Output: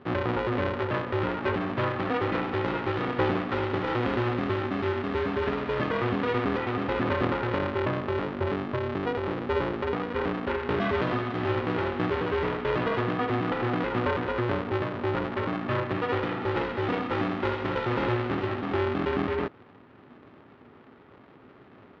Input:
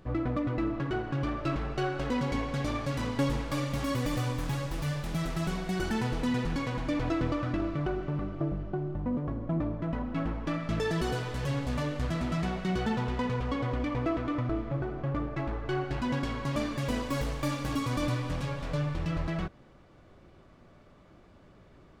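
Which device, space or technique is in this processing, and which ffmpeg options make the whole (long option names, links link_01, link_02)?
ring modulator pedal into a guitar cabinet: -af "aeval=exprs='val(0)*sgn(sin(2*PI*240*n/s))':channel_layout=same,highpass=89,equalizer=frequency=110:width_type=q:width=4:gain=5,equalizer=frequency=250:width_type=q:width=4:gain=7,equalizer=frequency=400:width_type=q:width=4:gain=5,equalizer=frequency=1200:width_type=q:width=4:gain=6,equalizer=frequency=1800:width_type=q:width=4:gain=3,lowpass=frequency=3400:width=0.5412,lowpass=frequency=3400:width=1.3066,volume=1dB"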